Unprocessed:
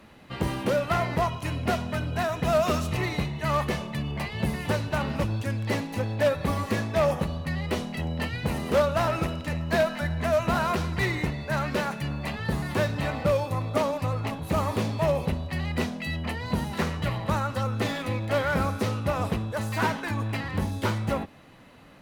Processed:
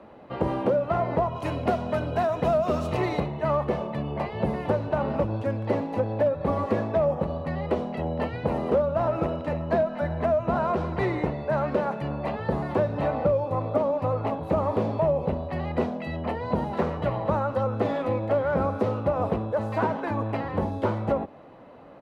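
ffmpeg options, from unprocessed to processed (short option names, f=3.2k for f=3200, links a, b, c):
-filter_complex "[0:a]asettb=1/sr,asplit=3[a][b][c];[a]atrim=end=1.354[d];[b]atrim=start=1.35:end=3.2,asetpts=PTS-STARTPTS,afade=t=in:d=0.004:c=qsin,afade=t=out:st=1.846:d=0.004:c=qsin,highshelf=f=3.1k:g=10.5[e];[c]atrim=start=3.196[f];[d][e]acrossfade=d=0.004:c1=hsin:c2=qsin[g];[g][f]acrossfade=d=0.004:c1=qsin:c2=hsin,firequalizer=gain_entry='entry(170,0);entry(350,6);entry(550,10);entry(1800,-5);entry(6300,-16);entry(15000,-23)':delay=0.05:min_phase=1,acrossover=split=260[h][i];[i]acompressor=threshold=-22dB:ratio=6[j];[h][j]amix=inputs=2:normalize=0,lowshelf=f=68:g=-7"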